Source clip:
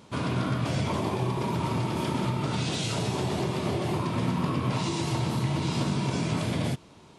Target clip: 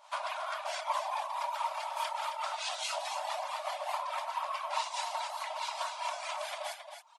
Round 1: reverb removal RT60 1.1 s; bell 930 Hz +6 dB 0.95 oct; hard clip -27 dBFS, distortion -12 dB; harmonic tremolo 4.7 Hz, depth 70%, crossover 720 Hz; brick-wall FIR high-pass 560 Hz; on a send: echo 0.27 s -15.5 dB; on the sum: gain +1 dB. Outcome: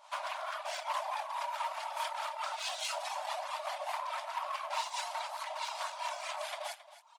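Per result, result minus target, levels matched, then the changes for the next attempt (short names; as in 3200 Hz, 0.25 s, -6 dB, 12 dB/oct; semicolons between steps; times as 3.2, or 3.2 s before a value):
hard clip: distortion +37 dB; echo-to-direct -7 dB
change: hard clip -17 dBFS, distortion -49 dB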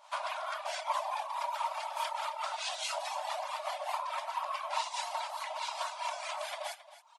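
echo-to-direct -7 dB
change: echo 0.27 s -8.5 dB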